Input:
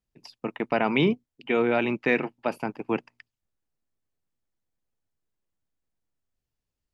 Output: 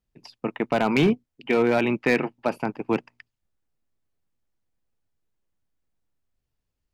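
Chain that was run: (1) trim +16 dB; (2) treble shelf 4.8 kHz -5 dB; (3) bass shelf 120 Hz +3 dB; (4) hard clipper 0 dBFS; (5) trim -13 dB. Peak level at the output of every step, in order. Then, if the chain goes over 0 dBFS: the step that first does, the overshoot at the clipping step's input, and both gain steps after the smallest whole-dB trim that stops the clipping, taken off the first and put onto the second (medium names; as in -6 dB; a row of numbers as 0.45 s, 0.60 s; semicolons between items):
+6.5 dBFS, +6.0 dBFS, +6.5 dBFS, 0.0 dBFS, -13.0 dBFS; step 1, 6.5 dB; step 1 +9 dB, step 5 -6 dB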